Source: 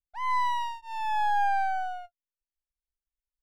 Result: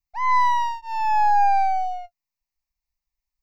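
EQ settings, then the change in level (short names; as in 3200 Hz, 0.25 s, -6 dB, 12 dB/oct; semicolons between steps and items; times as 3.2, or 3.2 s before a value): fixed phaser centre 2200 Hz, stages 8; +8.5 dB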